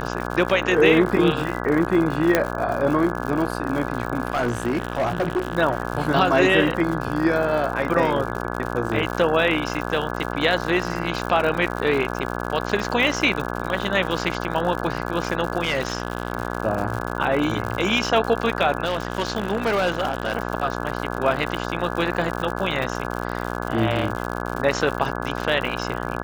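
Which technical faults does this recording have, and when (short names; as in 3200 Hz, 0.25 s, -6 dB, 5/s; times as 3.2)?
buzz 60 Hz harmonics 28 -28 dBFS
crackle 110/s -27 dBFS
2.35 pop -3 dBFS
4.32–5.57 clipped -18 dBFS
15.63–16.32 clipped -16.5 dBFS
18.84–20.35 clipped -17 dBFS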